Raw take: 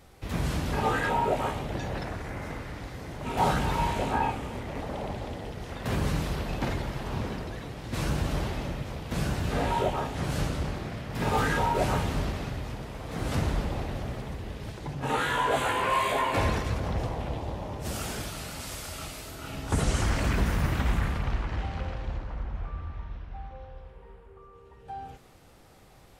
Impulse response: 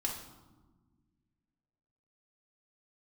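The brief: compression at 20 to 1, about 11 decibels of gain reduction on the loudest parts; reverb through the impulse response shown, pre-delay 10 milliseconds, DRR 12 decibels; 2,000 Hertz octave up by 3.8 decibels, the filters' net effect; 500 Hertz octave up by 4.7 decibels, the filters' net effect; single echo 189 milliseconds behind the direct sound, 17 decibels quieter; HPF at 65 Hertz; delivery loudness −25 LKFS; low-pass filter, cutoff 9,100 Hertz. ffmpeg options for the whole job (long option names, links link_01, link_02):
-filter_complex "[0:a]highpass=65,lowpass=9100,equalizer=frequency=500:width_type=o:gain=5.5,equalizer=frequency=2000:width_type=o:gain=4.5,acompressor=threshold=-29dB:ratio=20,aecho=1:1:189:0.141,asplit=2[link_01][link_02];[1:a]atrim=start_sample=2205,adelay=10[link_03];[link_02][link_03]afir=irnorm=-1:irlink=0,volume=-14.5dB[link_04];[link_01][link_04]amix=inputs=2:normalize=0,volume=9.5dB"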